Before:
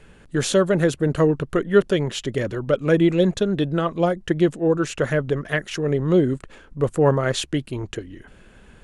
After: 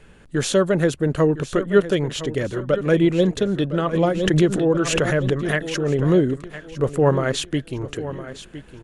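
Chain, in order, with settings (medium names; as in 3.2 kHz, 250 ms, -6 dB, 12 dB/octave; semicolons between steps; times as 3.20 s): feedback delay 1010 ms, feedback 38%, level -13.5 dB; 3.93–6.27 s: swell ahead of each attack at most 45 dB/s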